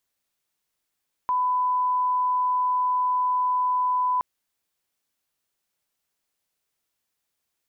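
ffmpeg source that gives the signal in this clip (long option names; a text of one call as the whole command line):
ffmpeg -f lavfi -i "sine=frequency=1000:duration=2.92:sample_rate=44100,volume=-1.94dB" out.wav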